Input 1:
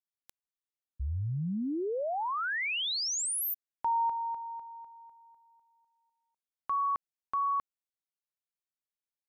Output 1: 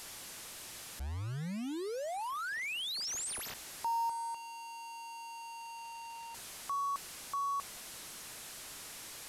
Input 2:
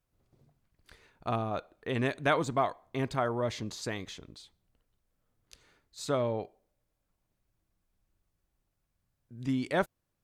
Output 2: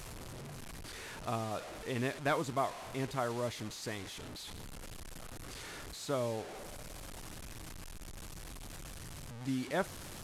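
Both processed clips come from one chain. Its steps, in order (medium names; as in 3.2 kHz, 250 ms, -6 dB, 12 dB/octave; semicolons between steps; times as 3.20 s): one-bit delta coder 64 kbps, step -35 dBFS; trim -5 dB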